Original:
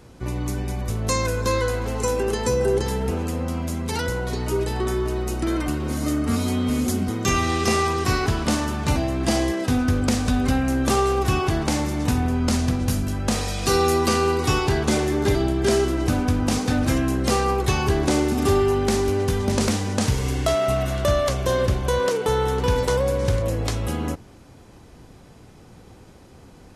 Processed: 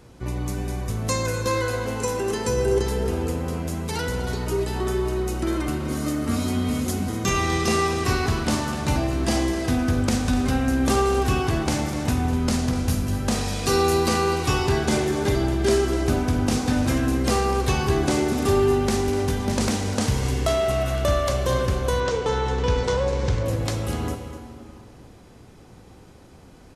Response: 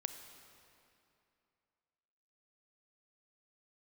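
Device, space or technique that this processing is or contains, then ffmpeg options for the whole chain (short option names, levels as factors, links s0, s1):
cave: -filter_complex "[0:a]aecho=1:1:249:0.224[s0];[1:a]atrim=start_sample=2205[s1];[s0][s1]afir=irnorm=-1:irlink=0,asettb=1/sr,asplit=3[s2][s3][s4];[s2]atrim=end=22.004[s5];[s3]atrim=start=22:end=23.46,asetpts=PTS-STARTPTS,afade=t=in:d=0.004:c=qsin,afade=t=out:st=1.456:d=0.004:c=qsin,lowpass=f=7100:w=0.5412,lowpass=f=7100:w=1.3066[s6];[s4]atrim=start=23.456[s7];[s5][s6]acrossfade=d=0.004:c1=hsin:c2=qsin[s8];[s8][s7]acrossfade=d=0.004:c1=qsin:c2=hsin"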